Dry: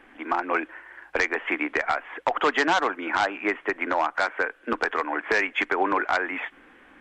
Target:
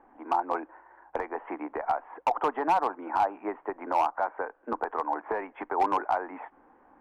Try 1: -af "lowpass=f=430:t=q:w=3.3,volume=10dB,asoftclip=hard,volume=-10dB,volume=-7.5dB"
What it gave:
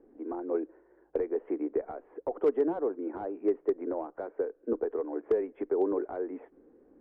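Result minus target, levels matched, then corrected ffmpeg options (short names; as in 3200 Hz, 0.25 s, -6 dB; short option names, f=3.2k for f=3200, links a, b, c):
1000 Hz band -14.5 dB
-af "lowpass=f=880:t=q:w=3.3,volume=10dB,asoftclip=hard,volume=-10dB,volume=-7.5dB"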